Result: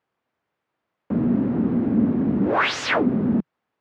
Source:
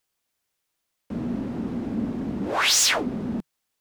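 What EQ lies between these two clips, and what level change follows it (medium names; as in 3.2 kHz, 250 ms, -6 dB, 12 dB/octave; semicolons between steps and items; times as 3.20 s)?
high-pass 100 Hz 12 dB/octave; low-pass 1.5 kHz 12 dB/octave; dynamic bell 820 Hz, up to -5 dB, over -41 dBFS, Q 0.95; +9.0 dB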